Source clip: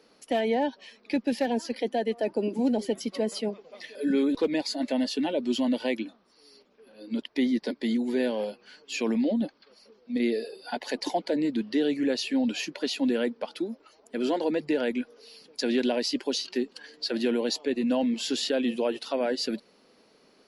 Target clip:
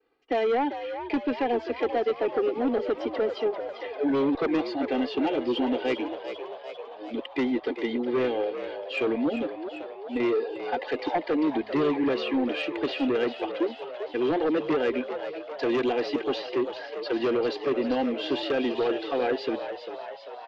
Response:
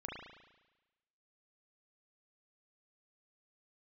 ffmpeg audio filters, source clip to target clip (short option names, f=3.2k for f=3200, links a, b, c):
-filter_complex "[0:a]lowpass=f=3k:w=0.5412,lowpass=f=3k:w=1.3066,agate=range=-33dB:threshold=-51dB:ratio=3:detection=peak,aecho=1:1:2.5:0.96,aeval=exprs='0.316*(cos(1*acos(clip(val(0)/0.316,-1,1)))-cos(1*PI/2))+0.126*(cos(5*acos(clip(val(0)/0.316,-1,1)))-cos(5*PI/2))':c=same,asplit=2[a][b];[b]asplit=8[c][d][e][f][g][h][i][j];[c]adelay=395,afreqshift=74,volume=-10dB[k];[d]adelay=790,afreqshift=148,volume=-14dB[l];[e]adelay=1185,afreqshift=222,volume=-18dB[m];[f]adelay=1580,afreqshift=296,volume=-22dB[n];[g]adelay=1975,afreqshift=370,volume=-26.1dB[o];[h]adelay=2370,afreqshift=444,volume=-30.1dB[p];[i]adelay=2765,afreqshift=518,volume=-34.1dB[q];[j]adelay=3160,afreqshift=592,volume=-38.1dB[r];[k][l][m][n][o][p][q][r]amix=inputs=8:normalize=0[s];[a][s]amix=inputs=2:normalize=0,volume=-8dB"